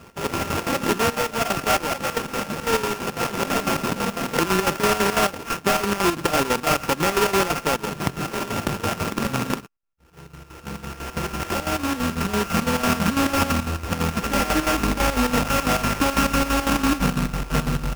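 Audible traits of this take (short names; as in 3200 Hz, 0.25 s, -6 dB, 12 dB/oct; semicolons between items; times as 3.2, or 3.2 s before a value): a buzz of ramps at a fixed pitch in blocks of 32 samples; chopped level 6 Hz, depth 65%, duty 60%; aliases and images of a low sample rate 4000 Hz, jitter 20%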